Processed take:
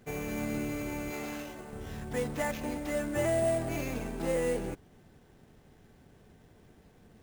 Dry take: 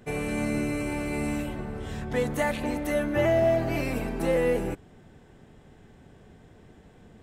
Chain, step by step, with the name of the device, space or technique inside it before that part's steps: 1.1–1.73 tone controls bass -11 dB, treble +7 dB; early companding sampler (sample-rate reducer 9000 Hz, jitter 0%; companded quantiser 6-bit); gain -6 dB

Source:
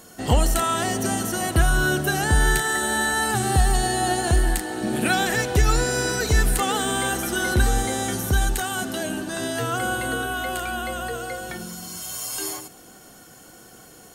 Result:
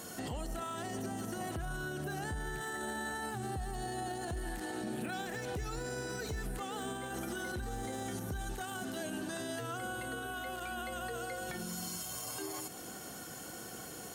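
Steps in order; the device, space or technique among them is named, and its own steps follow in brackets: podcast mastering chain (HPF 60 Hz 12 dB/oct; de-esser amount 60%; compressor 3:1, threshold -39 dBFS, peak gain reduction 18 dB; limiter -31.5 dBFS, peak gain reduction 8.5 dB; gain +1.5 dB; MP3 112 kbps 44100 Hz)

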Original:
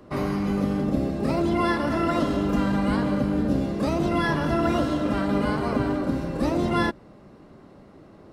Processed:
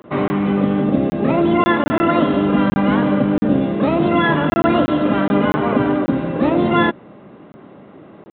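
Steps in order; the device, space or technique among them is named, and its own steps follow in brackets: call with lost packets (HPF 140 Hz 12 dB/oct; downsampling 8000 Hz; packet loss packets of 20 ms random); gain +8.5 dB

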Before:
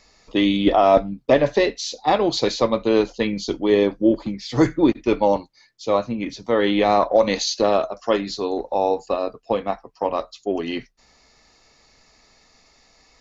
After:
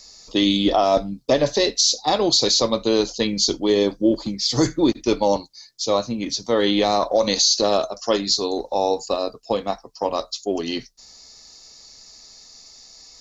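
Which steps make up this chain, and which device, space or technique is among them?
over-bright horn tweeter (resonant high shelf 3400 Hz +12 dB, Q 1.5; limiter -7.5 dBFS, peak gain reduction 8.5 dB)

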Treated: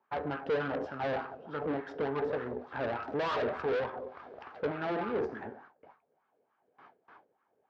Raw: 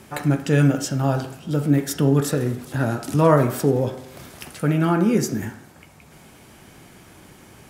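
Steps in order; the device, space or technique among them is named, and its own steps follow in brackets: gate with hold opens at -34 dBFS; wah-wah guitar rig (wah 3.4 Hz 490–1200 Hz, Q 4.3; tube stage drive 39 dB, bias 0.7; speaker cabinet 79–4500 Hz, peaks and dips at 79 Hz +8 dB, 250 Hz +4 dB, 440 Hz +7 dB, 780 Hz +3 dB, 1600 Hz +5 dB); gain +6.5 dB

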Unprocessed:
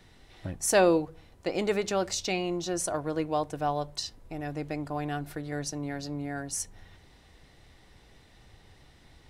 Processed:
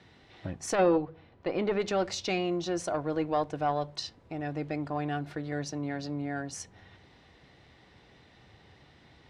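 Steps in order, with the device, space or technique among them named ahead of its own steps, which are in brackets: valve radio (BPF 91–4300 Hz; tube stage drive 15 dB, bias 0.35; core saturation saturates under 440 Hz); 0.75–1.8 air absorption 180 m; gain +2.5 dB

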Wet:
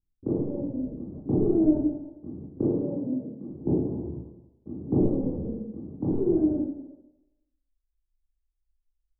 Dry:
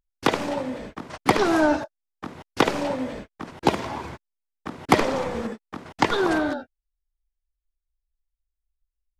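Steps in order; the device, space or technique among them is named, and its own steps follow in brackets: 2.63–3.47 HPF 120 Hz 24 dB/oct; next room (LPF 380 Hz 24 dB/oct; reverb RT60 1.0 s, pre-delay 18 ms, DRR -8 dB); gain -6 dB

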